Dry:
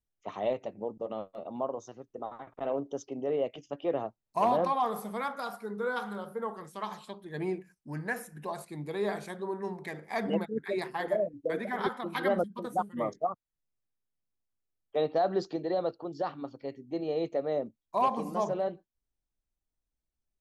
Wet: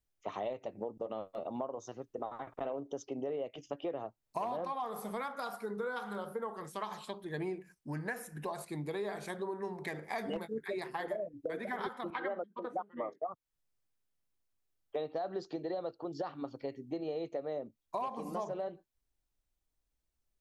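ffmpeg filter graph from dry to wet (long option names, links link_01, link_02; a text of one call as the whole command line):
ffmpeg -i in.wav -filter_complex "[0:a]asettb=1/sr,asplit=3[link_01][link_02][link_03];[link_01]atrim=end=10.184[link_04];[link_02]atrim=start=10.18:end=10.67,asetpts=PTS-STARTPTS,afade=type=in:duration=0.004:curve=qsin,afade=type=out:start_time=0.486:duration=0.004:curve=qsin,aemphasis=mode=production:type=cd,asplit=2[link_05][link_06];[link_06]adelay=18,volume=-10.5dB[link_07];[link_05][link_07]amix=inputs=2:normalize=0,atrim=end_sample=21609,asoftclip=type=hard:threshold=-21dB[link_08];[link_03]atrim=start=10.666[link_09];[link_04][link_08]acrossfade=duration=0.004:curve1=hsin:curve2=qsin[link_10];[link_10][link_09]acrossfade=duration=0.004:curve1=qsin:curve2=hsin,asettb=1/sr,asplit=3[link_11][link_12][link_13];[link_11]atrim=end=12.104[link_14];[link_12]atrim=start=12.1:end=13.29,asetpts=PTS-STARTPTS,afade=type=in:duration=0.004:curve=qsin,afade=type=out:start_time=1.186:duration=0.004:curve=qsin,highpass=330,lowpass=2200,agate=range=-33dB:threshold=-56dB:ratio=3:release=100:detection=peak[link_15];[link_13]atrim=start=13.286[link_16];[link_14][link_15]acrossfade=duration=0.004:curve1=hsin:curve2=qsin[link_17];[link_17][link_16]acrossfade=duration=0.004:curve1=qsin:curve2=hsin,equalizer=frequency=200:width=2.6:gain=-3.5,acompressor=threshold=-38dB:ratio=6,volume=3dB" out.wav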